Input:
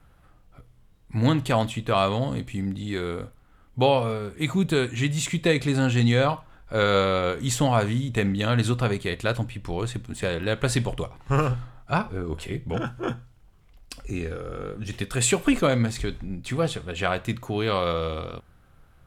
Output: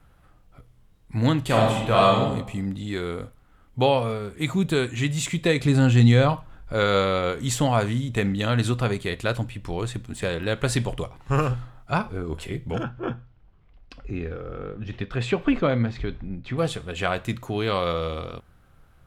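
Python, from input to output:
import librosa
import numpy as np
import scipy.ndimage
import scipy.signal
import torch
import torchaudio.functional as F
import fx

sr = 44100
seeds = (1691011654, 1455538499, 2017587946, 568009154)

y = fx.reverb_throw(x, sr, start_s=1.44, length_s=0.74, rt60_s=0.83, drr_db=-2.5)
y = fx.low_shelf(y, sr, hz=240.0, db=7.5, at=(5.65, 6.74))
y = fx.air_absorb(y, sr, metres=250.0, at=(12.83, 16.57), fade=0.02)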